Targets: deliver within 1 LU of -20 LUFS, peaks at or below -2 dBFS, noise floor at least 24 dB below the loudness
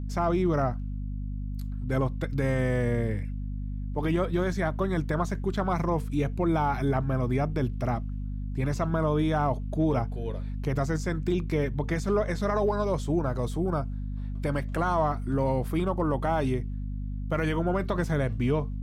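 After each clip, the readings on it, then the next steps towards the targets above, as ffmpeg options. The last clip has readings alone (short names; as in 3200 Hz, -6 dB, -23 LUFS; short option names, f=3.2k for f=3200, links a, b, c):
hum 50 Hz; harmonics up to 250 Hz; hum level -30 dBFS; loudness -28.5 LUFS; peak -14.0 dBFS; loudness target -20.0 LUFS
-> -af "bandreject=f=50:t=h:w=4,bandreject=f=100:t=h:w=4,bandreject=f=150:t=h:w=4,bandreject=f=200:t=h:w=4,bandreject=f=250:t=h:w=4"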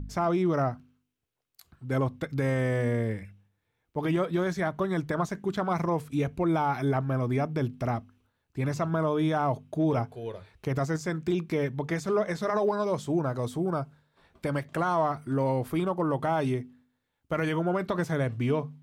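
hum none; loudness -29.0 LUFS; peak -16.0 dBFS; loudness target -20.0 LUFS
-> -af "volume=9dB"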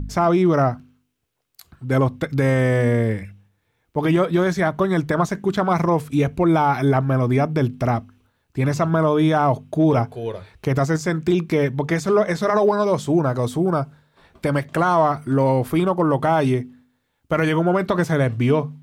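loudness -20.0 LUFS; peak -7.0 dBFS; noise floor -70 dBFS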